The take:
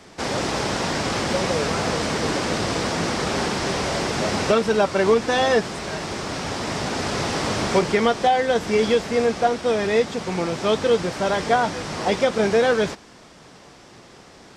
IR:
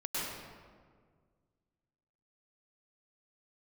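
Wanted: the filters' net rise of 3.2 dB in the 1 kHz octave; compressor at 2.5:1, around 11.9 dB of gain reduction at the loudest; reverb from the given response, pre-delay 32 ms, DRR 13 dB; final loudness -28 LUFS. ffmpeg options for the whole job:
-filter_complex "[0:a]equalizer=f=1000:t=o:g=4.5,acompressor=threshold=0.0282:ratio=2.5,asplit=2[s0][s1];[1:a]atrim=start_sample=2205,adelay=32[s2];[s1][s2]afir=irnorm=-1:irlink=0,volume=0.126[s3];[s0][s3]amix=inputs=2:normalize=0,volume=1.19"

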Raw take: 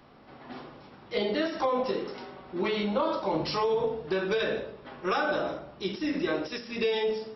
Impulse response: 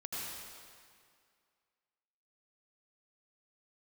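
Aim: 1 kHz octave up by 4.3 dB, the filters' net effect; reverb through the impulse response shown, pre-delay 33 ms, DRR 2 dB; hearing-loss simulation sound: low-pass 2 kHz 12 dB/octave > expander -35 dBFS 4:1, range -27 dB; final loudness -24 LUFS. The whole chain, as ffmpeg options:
-filter_complex "[0:a]equalizer=f=1000:t=o:g=5.5,asplit=2[s0][s1];[1:a]atrim=start_sample=2205,adelay=33[s2];[s1][s2]afir=irnorm=-1:irlink=0,volume=0.631[s3];[s0][s3]amix=inputs=2:normalize=0,lowpass=2000,agate=range=0.0447:threshold=0.0178:ratio=4,volume=1.41"

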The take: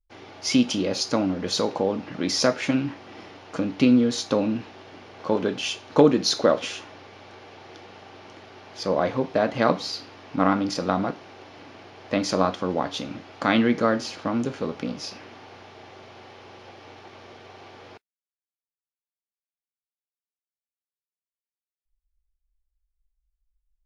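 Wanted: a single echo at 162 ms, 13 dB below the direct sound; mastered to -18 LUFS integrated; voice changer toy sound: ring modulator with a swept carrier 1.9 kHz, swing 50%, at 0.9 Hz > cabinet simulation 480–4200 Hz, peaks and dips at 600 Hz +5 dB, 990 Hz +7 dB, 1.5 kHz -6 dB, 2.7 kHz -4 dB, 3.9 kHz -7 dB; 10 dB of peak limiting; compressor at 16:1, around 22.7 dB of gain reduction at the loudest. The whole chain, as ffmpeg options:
-af "acompressor=threshold=0.0224:ratio=16,alimiter=level_in=1.68:limit=0.0631:level=0:latency=1,volume=0.596,aecho=1:1:162:0.224,aeval=exprs='val(0)*sin(2*PI*1900*n/s+1900*0.5/0.9*sin(2*PI*0.9*n/s))':c=same,highpass=480,equalizer=f=600:t=q:w=4:g=5,equalizer=f=990:t=q:w=4:g=7,equalizer=f=1500:t=q:w=4:g=-6,equalizer=f=2700:t=q:w=4:g=-4,equalizer=f=3900:t=q:w=4:g=-7,lowpass=f=4200:w=0.5412,lowpass=f=4200:w=1.3066,volume=22.4"

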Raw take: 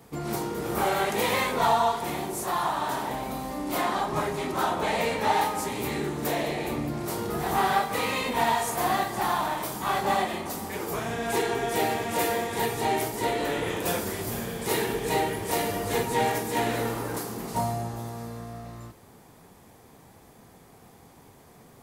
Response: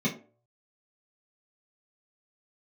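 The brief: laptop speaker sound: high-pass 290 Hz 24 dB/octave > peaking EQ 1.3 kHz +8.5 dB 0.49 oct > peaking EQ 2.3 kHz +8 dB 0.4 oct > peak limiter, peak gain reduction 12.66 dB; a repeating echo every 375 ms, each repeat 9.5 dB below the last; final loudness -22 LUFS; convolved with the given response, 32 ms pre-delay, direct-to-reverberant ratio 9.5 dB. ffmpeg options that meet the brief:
-filter_complex "[0:a]aecho=1:1:375|750|1125|1500:0.335|0.111|0.0365|0.012,asplit=2[s0][s1];[1:a]atrim=start_sample=2205,adelay=32[s2];[s1][s2]afir=irnorm=-1:irlink=0,volume=0.119[s3];[s0][s3]amix=inputs=2:normalize=0,highpass=f=290:w=0.5412,highpass=f=290:w=1.3066,equalizer=f=1300:t=o:w=0.49:g=8.5,equalizer=f=2300:t=o:w=0.4:g=8,volume=2.24,alimiter=limit=0.211:level=0:latency=1"

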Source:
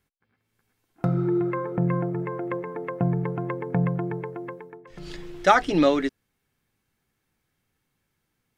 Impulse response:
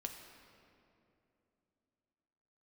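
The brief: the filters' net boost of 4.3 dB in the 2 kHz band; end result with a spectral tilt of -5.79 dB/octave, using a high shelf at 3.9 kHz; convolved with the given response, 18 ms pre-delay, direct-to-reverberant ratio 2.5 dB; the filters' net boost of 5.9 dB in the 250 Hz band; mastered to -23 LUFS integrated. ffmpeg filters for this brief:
-filter_complex "[0:a]equalizer=f=250:t=o:g=9,equalizer=f=2000:t=o:g=4,highshelf=f=3900:g=8,asplit=2[s0][s1];[1:a]atrim=start_sample=2205,adelay=18[s2];[s1][s2]afir=irnorm=-1:irlink=0,volume=0.944[s3];[s0][s3]amix=inputs=2:normalize=0,volume=0.75"

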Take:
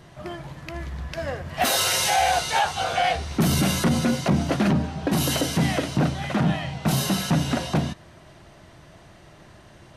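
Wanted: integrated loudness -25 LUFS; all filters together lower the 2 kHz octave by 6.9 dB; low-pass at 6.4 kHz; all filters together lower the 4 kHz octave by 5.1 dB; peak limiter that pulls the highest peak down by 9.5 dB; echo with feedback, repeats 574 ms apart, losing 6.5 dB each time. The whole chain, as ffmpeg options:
-af "lowpass=6400,equalizer=f=2000:t=o:g=-8.5,equalizer=f=4000:t=o:g=-3,alimiter=limit=0.106:level=0:latency=1,aecho=1:1:574|1148|1722|2296|2870|3444:0.473|0.222|0.105|0.0491|0.0231|0.0109,volume=1.5"

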